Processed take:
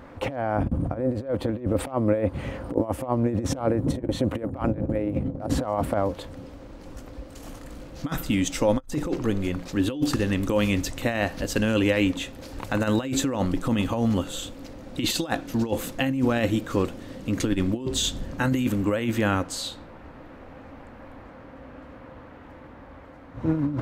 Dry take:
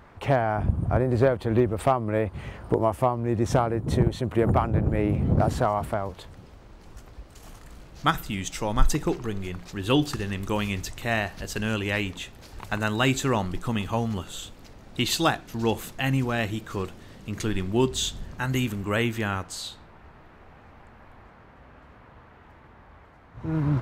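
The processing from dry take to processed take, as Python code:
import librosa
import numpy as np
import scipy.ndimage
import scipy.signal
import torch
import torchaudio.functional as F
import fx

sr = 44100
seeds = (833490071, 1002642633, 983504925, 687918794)

y = fx.over_compress(x, sr, threshold_db=-27.0, ratio=-0.5)
y = fx.small_body(y, sr, hz=(280.0, 520.0), ring_ms=60, db=13)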